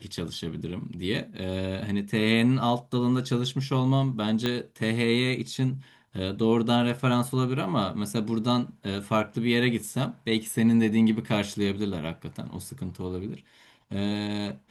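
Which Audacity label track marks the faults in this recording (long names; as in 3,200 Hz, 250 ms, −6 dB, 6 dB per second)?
4.460000	4.460000	click −13 dBFS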